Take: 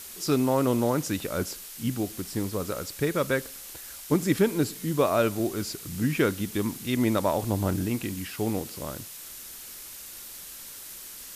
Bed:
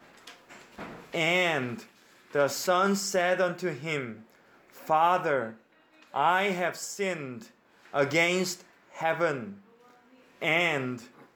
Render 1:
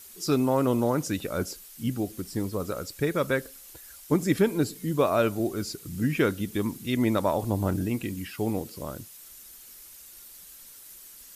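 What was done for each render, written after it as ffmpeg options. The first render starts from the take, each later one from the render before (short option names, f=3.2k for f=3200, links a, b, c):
-af "afftdn=nr=9:nf=-43"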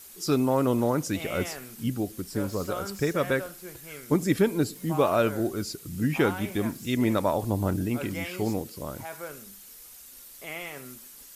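-filter_complex "[1:a]volume=-12.5dB[a];[0:a][a]amix=inputs=2:normalize=0"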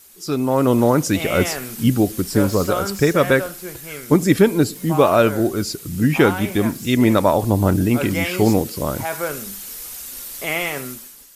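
-af "dynaudnorm=f=120:g=9:m=14.5dB"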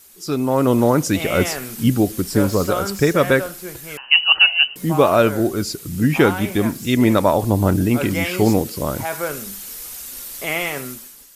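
-filter_complex "[0:a]asettb=1/sr,asplit=3[a][b][c];[a]atrim=end=3.974[d];[b]atrim=start=3.97:end=4.76,asetpts=PTS-STARTPTS,afade=t=in:d=0.004:c=qsin,afade=t=out:st=0.786:d=0.004:c=qsin,lowpass=f=2.6k:t=q:w=0.5098,lowpass=f=2.6k:t=q:w=0.6013,lowpass=f=2.6k:t=q:w=0.9,lowpass=f=2.6k:t=q:w=2.563,afreqshift=-3100[e];[c]atrim=start=4.756[f];[d][e]acrossfade=d=0.004:c1=hsin:c2=qsin[g];[g][f]acrossfade=d=0.004:c1=qsin:c2=hsin"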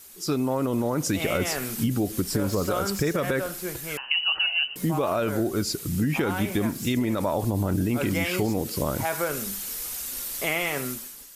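-af "alimiter=limit=-10dB:level=0:latency=1:release=19,acompressor=threshold=-22dB:ratio=4"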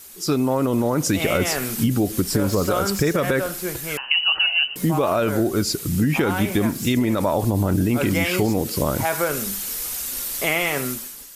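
-af "volume=5dB"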